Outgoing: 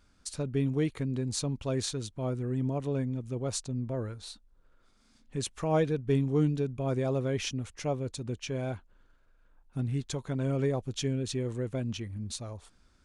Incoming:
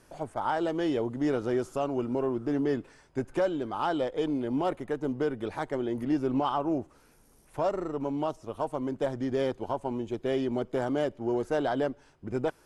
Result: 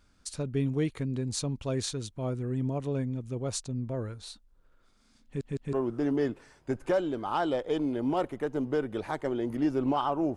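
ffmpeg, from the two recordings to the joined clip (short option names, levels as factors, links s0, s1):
-filter_complex "[0:a]apad=whole_dur=10.36,atrim=end=10.36,asplit=3[s0][s1][s2];[s0]atrim=end=5.412[s3];[s1]atrim=start=5.248:end=5.412[s4];[s2]atrim=start=5.248:end=5.412[s5];[1:a]atrim=start=2.208:end=6.84[s6];[s3][s4]acrossfade=d=0.004:c1=hsin:c2=hsin[s7];[s7][s5]acrossfade=d=0.004:c1=hsin:c2=hsin[s8];[s8][s6]acrossfade=d=0.004:c1=hsin:c2=hsin"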